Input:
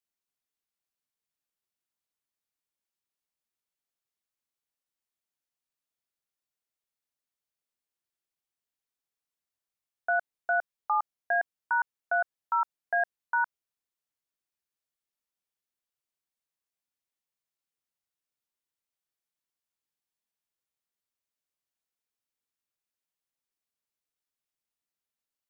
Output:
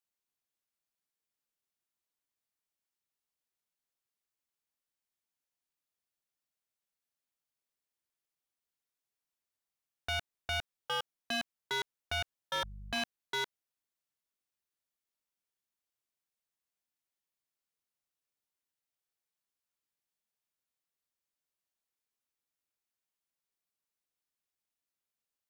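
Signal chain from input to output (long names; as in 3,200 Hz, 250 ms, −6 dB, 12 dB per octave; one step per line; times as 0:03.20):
0:12.53–0:13.02: hum with harmonics 50 Hz, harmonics 4, −45 dBFS −8 dB per octave
wave folding −26 dBFS
level −1.5 dB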